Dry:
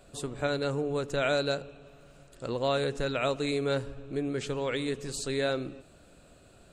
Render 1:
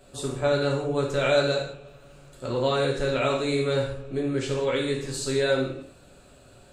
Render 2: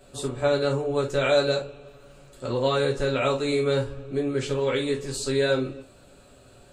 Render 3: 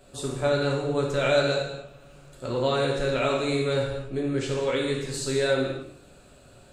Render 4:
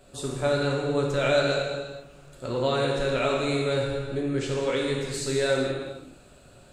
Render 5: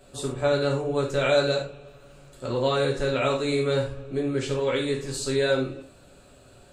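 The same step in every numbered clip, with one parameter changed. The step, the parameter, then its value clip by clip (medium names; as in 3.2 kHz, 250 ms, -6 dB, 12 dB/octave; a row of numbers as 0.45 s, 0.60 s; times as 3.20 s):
gated-style reverb, gate: 210 ms, 90 ms, 320 ms, 500 ms, 140 ms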